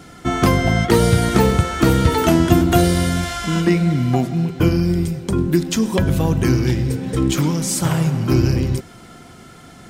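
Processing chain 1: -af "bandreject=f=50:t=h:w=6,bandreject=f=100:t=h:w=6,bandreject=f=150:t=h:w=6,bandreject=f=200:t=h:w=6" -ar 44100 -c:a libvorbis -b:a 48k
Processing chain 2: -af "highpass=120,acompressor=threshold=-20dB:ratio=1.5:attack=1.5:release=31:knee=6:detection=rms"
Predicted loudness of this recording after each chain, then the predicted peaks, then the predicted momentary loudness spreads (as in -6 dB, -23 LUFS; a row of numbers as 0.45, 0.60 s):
-18.0, -21.5 LUFS; -1.5, -7.0 dBFS; 7, 5 LU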